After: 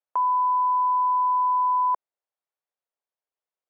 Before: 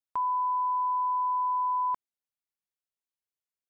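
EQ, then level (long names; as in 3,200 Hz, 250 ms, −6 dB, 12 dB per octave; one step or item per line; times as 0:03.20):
high-pass filter 530 Hz 24 dB per octave
spectral tilt −6 dB per octave
+6.0 dB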